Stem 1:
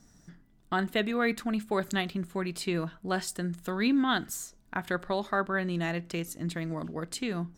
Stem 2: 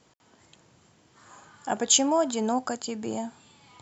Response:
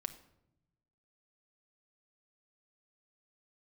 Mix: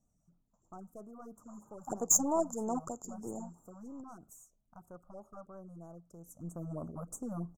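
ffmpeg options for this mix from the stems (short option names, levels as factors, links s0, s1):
-filter_complex "[0:a]equalizer=f=590:t=o:w=0.21:g=3.5,aecho=1:1:1.5:0.33,aeval=exprs='(tanh(15.8*val(0)+0.45)-tanh(0.45))/15.8':c=same,volume=0.668,afade=t=in:st=6.19:d=0.57:silence=0.223872[s0];[1:a]agate=range=0.0447:threshold=0.00141:ratio=16:detection=peak,aeval=exprs='0.473*(cos(1*acos(clip(val(0)/0.473,-1,1)))-cos(1*PI/2))+0.0473*(cos(6*acos(clip(val(0)/0.473,-1,1)))-cos(6*PI/2))+0.0376*(cos(7*acos(clip(val(0)/0.473,-1,1)))-cos(7*PI/2))+0.0422*(cos(8*acos(clip(val(0)/0.473,-1,1)))-cos(8*PI/2))':c=same,adelay=200,volume=0.708[s1];[s0][s1]amix=inputs=2:normalize=0,asuperstop=centerf=2800:order=12:qfactor=0.58,afftfilt=real='re*(1-between(b*sr/1024,330*pow(4300/330,0.5+0.5*sin(2*PI*3.1*pts/sr))/1.41,330*pow(4300/330,0.5+0.5*sin(2*PI*3.1*pts/sr))*1.41))':imag='im*(1-between(b*sr/1024,330*pow(4300/330,0.5+0.5*sin(2*PI*3.1*pts/sr))/1.41,330*pow(4300/330,0.5+0.5*sin(2*PI*3.1*pts/sr))*1.41))':win_size=1024:overlap=0.75"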